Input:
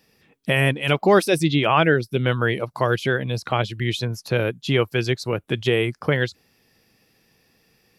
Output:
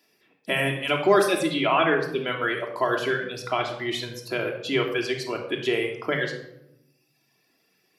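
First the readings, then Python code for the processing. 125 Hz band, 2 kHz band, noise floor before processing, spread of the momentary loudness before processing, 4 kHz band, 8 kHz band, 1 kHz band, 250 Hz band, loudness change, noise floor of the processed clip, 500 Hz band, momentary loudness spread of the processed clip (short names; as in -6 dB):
-13.0 dB, -2.5 dB, -63 dBFS, 8 LU, -2.5 dB, -2.5 dB, -2.0 dB, -4.5 dB, -3.5 dB, -69 dBFS, -3.0 dB, 9 LU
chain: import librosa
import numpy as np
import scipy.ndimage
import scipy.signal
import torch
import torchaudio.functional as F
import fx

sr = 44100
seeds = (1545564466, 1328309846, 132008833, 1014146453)

y = fx.dereverb_blind(x, sr, rt60_s=1.3)
y = scipy.signal.sosfilt(scipy.signal.butter(2, 290.0, 'highpass', fs=sr, output='sos'), y)
y = fx.room_shoebox(y, sr, seeds[0], volume_m3=2400.0, walls='furnished', distance_m=3.0)
y = y * 10.0 ** (-4.0 / 20.0)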